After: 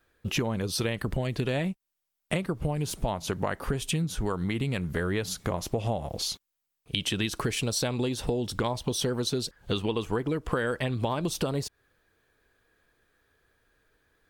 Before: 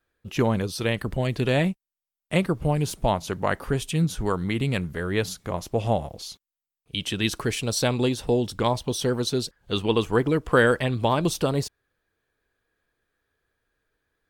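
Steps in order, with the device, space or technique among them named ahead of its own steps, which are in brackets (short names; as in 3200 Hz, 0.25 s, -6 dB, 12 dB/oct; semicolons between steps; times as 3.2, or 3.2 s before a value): serial compression, leveller first (compressor 1.5:1, threshold -30 dBFS, peak gain reduction 6 dB; compressor 6:1, threshold -33 dBFS, peak gain reduction 13 dB); gain +7.5 dB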